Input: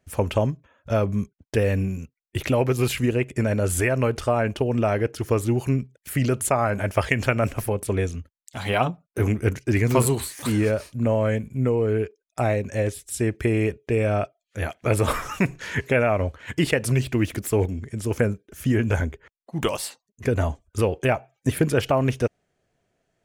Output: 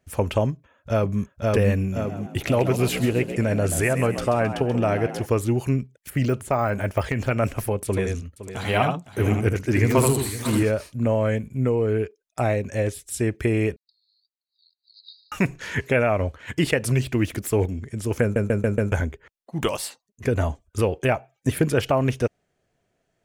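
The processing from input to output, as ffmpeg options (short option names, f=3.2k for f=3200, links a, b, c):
-filter_complex "[0:a]asplit=2[a][b];[b]afade=t=in:st=0.51:d=0.01,afade=t=out:st=1.22:d=0.01,aecho=0:1:520|1040|1560|2080|2600|3120|3640:0.891251|0.445625|0.222813|0.111406|0.0557032|0.0278516|0.0139258[c];[a][c]amix=inputs=2:normalize=0,asplit=3[d][e][f];[d]afade=t=out:st=1.95:d=0.02[g];[e]asplit=6[h][i][j][k][l][m];[i]adelay=133,afreqshift=58,volume=-10.5dB[n];[j]adelay=266,afreqshift=116,volume=-17.4dB[o];[k]adelay=399,afreqshift=174,volume=-24.4dB[p];[l]adelay=532,afreqshift=232,volume=-31.3dB[q];[m]adelay=665,afreqshift=290,volume=-38.2dB[r];[h][n][o][p][q][r]amix=inputs=6:normalize=0,afade=t=in:st=1.95:d=0.02,afade=t=out:st=5.25:d=0.02[s];[f]afade=t=in:st=5.25:d=0.02[t];[g][s][t]amix=inputs=3:normalize=0,asettb=1/sr,asplit=3[u][v][w];[u]atrim=end=6.104[x];[v]atrim=start=6.1:end=7.31,asetpts=PTS-STARTPTS,afade=t=in:d=0.004:c=qsin,afade=t=out:st=1.206:d=0.004:c=qsin,deesser=1[y];[w]atrim=start=7.306[z];[x][y]acrossfade=d=0.004:c1=hsin:c2=qsin[aa];[aa][z]acrossfade=d=0.004:c1=qsin:c2=hsin,asettb=1/sr,asplit=3[ab][ac][ad];[ab]atrim=end=7.854[ae];[ac]atrim=start=7.85:end=10.63,asetpts=PTS-STARTPTS,afade=t=in:d=0.004:c=qsin,afade=t=out:st=2.776:d=0.004:c=qsin,aecho=1:1:79|512|580:0.596|0.2|0.112,atrim=end_sample=122598[af];[ad]atrim=start=10.626[ag];[ae][af]acrossfade=d=0.004:c1=hsin:c2=qsin[ah];[ah][ag]acrossfade=d=0.004:c1=qsin:c2=hsin,asettb=1/sr,asplit=3[ai][aj][ak];[ai]atrim=end=13.764[al];[aj]atrim=start=13.76:end=15.32,asetpts=PTS-STARTPTS,afade=t=in:d=0.004:c=qsin,afade=t=out:st=1.556:d=0.004:c=qsin,asuperpass=centerf=4300:order=20:qfactor=3.7[am];[ak]atrim=start=15.316[an];[al][am]acrossfade=d=0.004:c1=hsin:c2=qsin[ao];[ao][an]acrossfade=d=0.004:c1=qsin:c2=hsin,asplit=6[ap][aq][ar][as][at][au];[ap]atrim=end=18.362[av];[aq]atrim=start=18.218:end=18.362[aw];[ar]atrim=start=18.218:end=18.362[ax];[as]atrim=start=18.218:end=18.362[ay];[at]atrim=start=18.218:end=18.362[az];[au]atrim=start=18.918[ba];[av][aw]acrossfade=d=0.004:c1=hsin:c2=hsin[bb];[bb][ax]acrossfade=d=0.004:c1=hsin:c2=hsin[bc];[bc][ay]acrossfade=d=0.004:c1=hsin:c2=hsin[bd];[bd][az]acrossfade=d=0.004:c1=hsin:c2=hsin[be];[be][ba]acrossfade=d=0.004:c1=hsin:c2=hsin"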